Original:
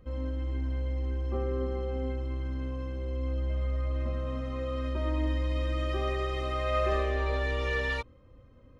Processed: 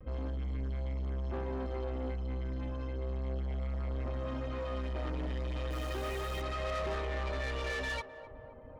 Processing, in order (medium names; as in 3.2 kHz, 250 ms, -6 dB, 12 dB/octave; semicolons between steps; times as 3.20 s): reverb removal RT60 0.74 s; level-controlled noise filter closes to 2 kHz, open at -29.5 dBFS; in parallel at -0.5 dB: peak limiter -28 dBFS, peak gain reduction 9 dB; 5.70–6.41 s: on the sum: small samples zeroed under -41 dBFS; vibrato 0.33 Hz 20 cents; saturation -31.5 dBFS, distortion -10 dB; on a send: band-passed feedback delay 259 ms, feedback 78%, band-pass 600 Hz, level -11 dB; on the sum: trim -1.5 dB